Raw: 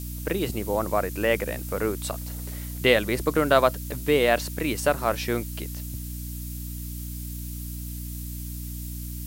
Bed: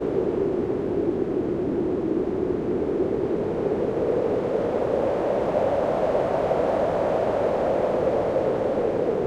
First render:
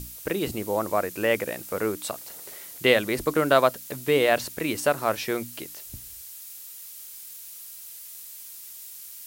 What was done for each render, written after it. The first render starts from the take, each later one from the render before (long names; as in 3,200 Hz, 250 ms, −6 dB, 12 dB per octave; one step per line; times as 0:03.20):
mains-hum notches 60/120/180/240/300 Hz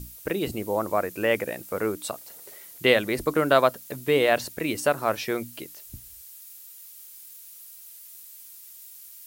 broadband denoise 6 dB, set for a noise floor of −43 dBFS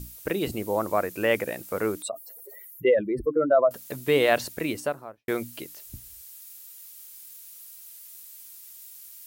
0:02.02–0:03.71: expanding power law on the bin magnitudes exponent 2.5
0:04.54–0:05.28: fade out and dull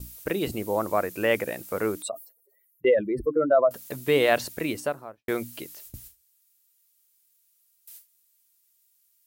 noise gate with hold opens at −33 dBFS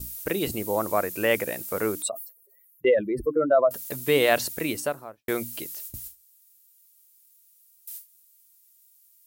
high-shelf EQ 5,300 Hz +8.5 dB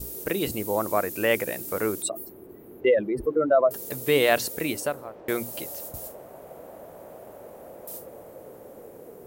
mix in bed −21.5 dB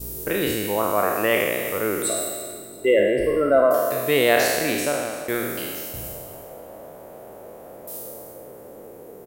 peak hold with a decay on every bin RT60 1.59 s
repeating echo 339 ms, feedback 41%, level −17 dB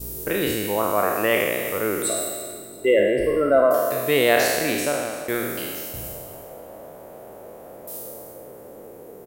no processing that can be heard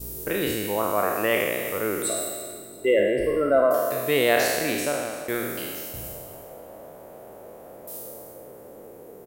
level −2.5 dB